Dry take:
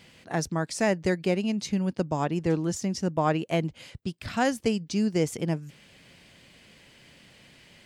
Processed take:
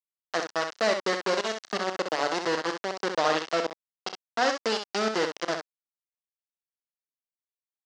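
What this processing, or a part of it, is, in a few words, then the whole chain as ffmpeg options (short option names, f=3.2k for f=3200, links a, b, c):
hand-held game console: -filter_complex "[0:a]acrusher=bits=3:mix=0:aa=0.000001,highpass=490,equalizer=f=890:t=q:w=4:g=-5,equalizer=f=2.4k:t=q:w=4:g=-8,equalizer=f=3.5k:t=q:w=4:g=-5,lowpass=f=5.5k:w=0.5412,lowpass=f=5.5k:w=1.3066,asettb=1/sr,asplit=3[a][b][c];[a]atrim=end=3.184[d];[b]atrim=start=3.18:end=4.55,asetpts=PTS-STARTPTS,afade=t=in:d=0.004:c=qsin,afade=t=out:st=1.366:d=0.004:c=qsin,lowpass=8k[e];[c]atrim=start=4.546[f];[d][e]acrossfade=d=0.004:c1=hsin:c2=qsin[g];[g][f]acrossfade=d=0.004:c1=qsin:c2=hsin,aecho=1:1:32|64:0.178|0.473,volume=2dB"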